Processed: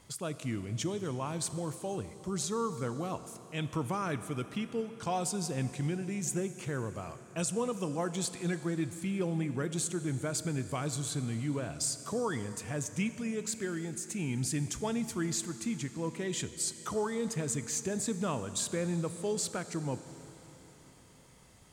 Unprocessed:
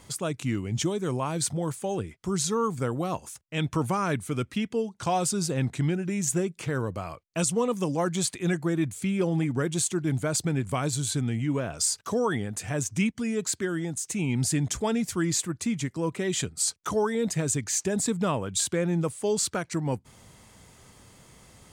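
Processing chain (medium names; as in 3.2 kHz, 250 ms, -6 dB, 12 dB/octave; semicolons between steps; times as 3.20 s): Schroeder reverb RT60 3.9 s, combs from 27 ms, DRR 11.5 dB; trim -7 dB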